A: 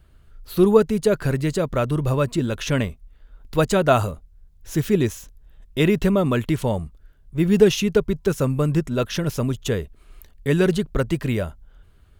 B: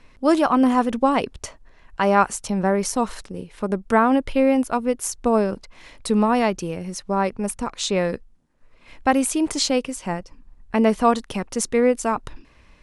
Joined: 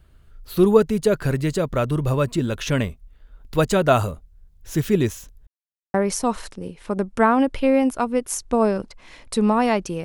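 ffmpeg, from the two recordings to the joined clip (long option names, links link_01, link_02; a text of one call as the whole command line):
ffmpeg -i cue0.wav -i cue1.wav -filter_complex "[0:a]apad=whole_dur=10.04,atrim=end=10.04,asplit=2[link_01][link_02];[link_01]atrim=end=5.47,asetpts=PTS-STARTPTS,afade=type=out:start_time=5.466:duration=0.004:curve=hsin[link_03];[link_02]atrim=start=5.47:end=5.94,asetpts=PTS-STARTPTS,volume=0[link_04];[1:a]atrim=start=2.67:end=6.77,asetpts=PTS-STARTPTS,afade=type=in:duration=0.004:curve=hsin[link_05];[link_03][link_04][link_05]concat=n=3:v=0:a=1" out.wav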